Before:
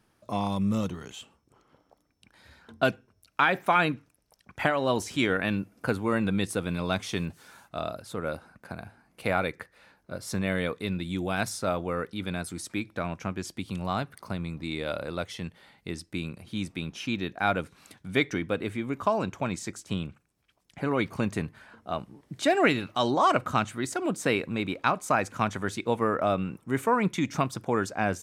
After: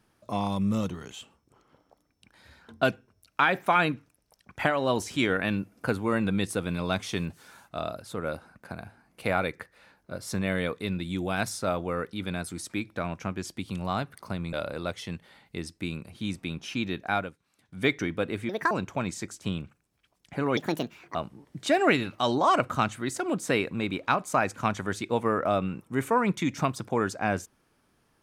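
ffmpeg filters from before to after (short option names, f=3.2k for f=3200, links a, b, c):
-filter_complex "[0:a]asplit=8[a][b][c][d][e][f][g][h];[a]atrim=end=14.532[i];[b]atrim=start=14.848:end=17.67,asetpts=PTS-STARTPTS,afade=t=out:st=2.562:d=0.26:silence=0.125893[j];[c]atrim=start=17.67:end=17.91,asetpts=PTS-STARTPTS,volume=-18dB[k];[d]atrim=start=17.91:end=18.814,asetpts=PTS-STARTPTS,afade=t=in:d=0.26:silence=0.125893[l];[e]atrim=start=18.81:end=19.16,asetpts=PTS-STARTPTS,asetrate=70119,aresample=44100[m];[f]atrim=start=19.156:end=21.024[n];[g]atrim=start=21.02:end=21.91,asetpts=PTS-STARTPTS,asetrate=67914,aresample=44100,atrim=end_sample=25486,asetpts=PTS-STARTPTS[o];[h]atrim=start=21.906[p];[j][k][l]concat=n=3:v=0:a=1[q];[i][q]acrossfade=d=0.004:c1=hsin:c2=hsin[r];[r][m]acrossfade=d=0.004:c1=hsin:c2=hsin[s];[s][n]acrossfade=d=0.004:c1=hsin:c2=hsin[t];[t][o]acrossfade=d=0.004:c1=hsin:c2=hsin[u];[u][p]acrossfade=d=0.004:c1=hsin:c2=hsin"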